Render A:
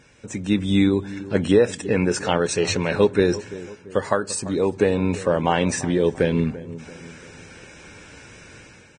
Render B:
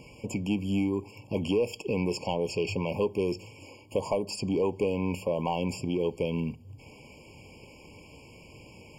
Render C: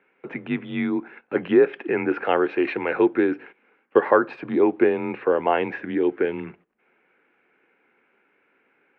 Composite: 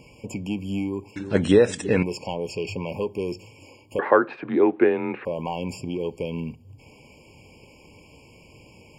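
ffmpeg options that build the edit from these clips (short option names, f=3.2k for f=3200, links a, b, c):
-filter_complex "[1:a]asplit=3[a][b][c];[a]atrim=end=1.162[d];[0:a]atrim=start=1.158:end=2.032[e];[b]atrim=start=2.028:end=3.992[f];[2:a]atrim=start=3.988:end=5.252[g];[c]atrim=start=5.248[h];[d][e]acrossfade=d=0.004:c1=hsin:c2=hsin[i];[i][f]acrossfade=d=0.004:c1=hsin:c2=hsin[j];[j][g]acrossfade=d=0.004:c1=hsin:c2=hsin[k];[k][h]acrossfade=d=0.004:c1=hsin:c2=hsin"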